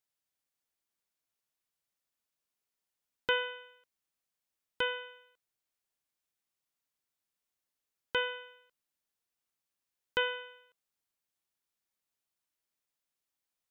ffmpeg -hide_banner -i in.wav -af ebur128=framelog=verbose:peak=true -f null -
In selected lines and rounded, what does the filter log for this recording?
Integrated loudness:
  I:         -34.7 LUFS
  Threshold: -46.4 LUFS
Loudness range:
  LRA:         4.5 LU
  Threshold: -61.2 LUFS
  LRA low:   -43.3 LUFS
  LRA high:  -38.8 LUFS
True peak:
  Peak:      -15.3 dBFS